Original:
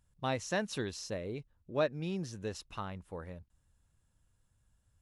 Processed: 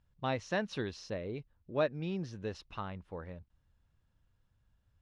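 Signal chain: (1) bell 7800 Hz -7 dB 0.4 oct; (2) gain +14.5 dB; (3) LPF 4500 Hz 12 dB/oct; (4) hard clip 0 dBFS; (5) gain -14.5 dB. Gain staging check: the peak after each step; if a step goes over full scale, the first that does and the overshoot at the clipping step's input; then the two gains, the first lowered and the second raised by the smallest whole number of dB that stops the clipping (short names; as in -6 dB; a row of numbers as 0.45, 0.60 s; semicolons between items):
-19.5, -5.0, -5.0, -5.0, -19.5 dBFS; no overload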